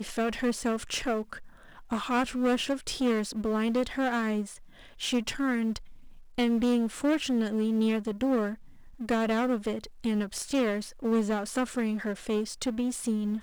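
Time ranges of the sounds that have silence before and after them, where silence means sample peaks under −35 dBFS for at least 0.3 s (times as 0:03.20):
0:01.91–0:04.44
0:05.01–0:05.77
0:06.38–0:08.54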